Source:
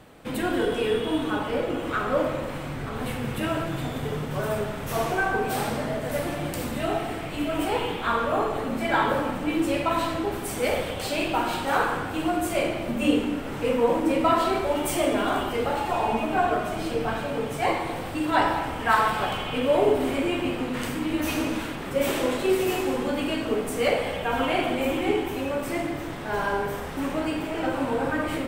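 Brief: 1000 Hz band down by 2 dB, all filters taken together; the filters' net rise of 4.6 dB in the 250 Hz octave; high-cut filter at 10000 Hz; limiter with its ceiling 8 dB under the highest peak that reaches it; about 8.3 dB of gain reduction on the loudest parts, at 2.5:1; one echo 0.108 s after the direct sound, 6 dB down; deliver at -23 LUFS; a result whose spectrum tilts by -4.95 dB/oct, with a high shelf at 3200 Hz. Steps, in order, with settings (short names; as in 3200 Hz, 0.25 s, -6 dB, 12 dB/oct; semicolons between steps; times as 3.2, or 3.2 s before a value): LPF 10000 Hz; bell 250 Hz +6 dB; bell 1000 Hz -3.5 dB; high shelf 3200 Hz +4.5 dB; compressor 2.5:1, threshold -25 dBFS; limiter -20.5 dBFS; echo 0.108 s -6 dB; gain +5.5 dB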